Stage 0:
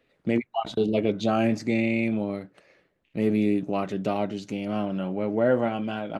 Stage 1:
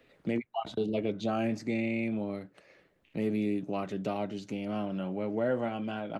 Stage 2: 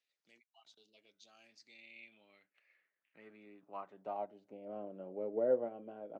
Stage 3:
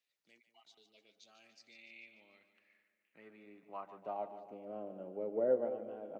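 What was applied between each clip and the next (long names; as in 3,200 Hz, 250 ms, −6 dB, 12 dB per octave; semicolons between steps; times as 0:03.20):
multiband upward and downward compressor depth 40%; level −7 dB
band-pass filter sweep 5,700 Hz → 480 Hz, 0:01.28–0:04.88; expander for the loud parts 1.5 to 1, over −50 dBFS; level +2 dB
echo with a time of its own for lows and highs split 570 Hz, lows 199 ms, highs 146 ms, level −11 dB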